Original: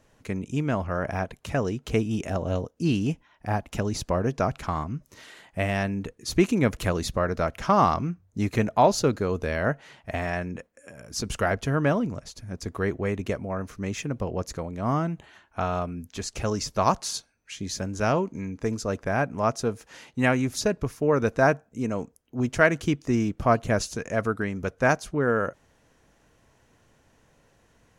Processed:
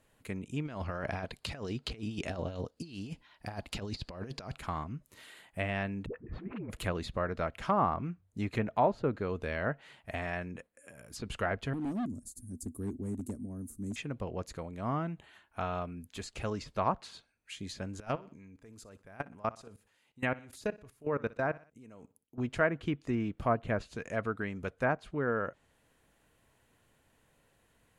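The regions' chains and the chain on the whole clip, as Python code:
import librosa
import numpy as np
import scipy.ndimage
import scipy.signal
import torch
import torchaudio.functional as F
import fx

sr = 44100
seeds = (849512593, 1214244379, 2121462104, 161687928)

y = fx.chain(x, sr, fx.peak_eq(hz=4600.0, db=13.5, octaves=0.51),
    fx.over_compress(threshold_db=-29.0, ratio=-0.5), at=(0.65, 4.55))
y = fx.chain(y, sr, fx.lowpass(hz=1700.0, slope=24),
    fx.over_compress(threshold_db=-31.0, ratio=-1.0),
    fx.dispersion(late='highs', ms=75.0, hz=380.0), at=(6.06, 6.7))
y = fx.chain(y, sr, fx.curve_eq(hz=(100.0, 160.0, 240.0, 530.0, 2900.0, 8400.0), db=(0, -7, 10, -15, -30, 12)),
    fx.clip_hard(threshold_db=-23.0), at=(11.73, 13.96))
y = fx.chain(y, sr, fx.level_steps(step_db=22),
    fx.echo_feedback(ms=61, feedback_pct=43, wet_db=-20), at=(18.0, 22.38))
y = fx.high_shelf(y, sr, hz=3000.0, db=11.5)
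y = fx.env_lowpass_down(y, sr, base_hz=1500.0, full_db=-16.5)
y = fx.peak_eq(y, sr, hz=5800.0, db=-14.5, octaves=0.61)
y = y * 10.0 ** (-8.5 / 20.0)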